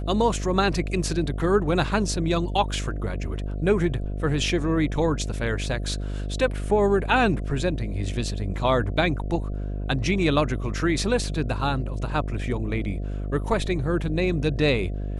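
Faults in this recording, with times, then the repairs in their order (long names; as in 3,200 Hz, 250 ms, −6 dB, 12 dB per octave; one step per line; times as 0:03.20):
mains buzz 50 Hz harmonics 14 −29 dBFS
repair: hum removal 50 Hz, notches 14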